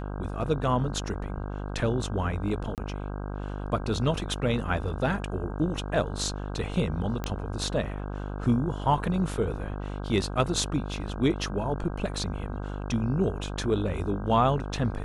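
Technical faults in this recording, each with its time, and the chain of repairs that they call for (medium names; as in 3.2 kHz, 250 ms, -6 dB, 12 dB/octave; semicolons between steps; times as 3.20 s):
buzz 50 Hz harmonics 32 -34 dBFS
2.75–2.78 s: dropout 28 ms
7.24 s: pop -17 dBFS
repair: de-click; de-hum 50 Hz, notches 32; interpolate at 2.75 s, 28 ms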